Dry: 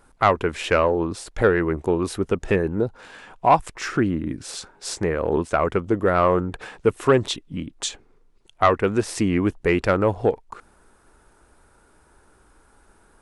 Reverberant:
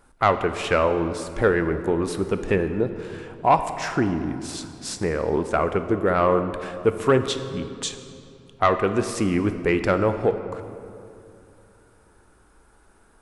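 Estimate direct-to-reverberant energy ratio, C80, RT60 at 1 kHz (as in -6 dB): 8.5 dB, 10.5 dB, 2.5 s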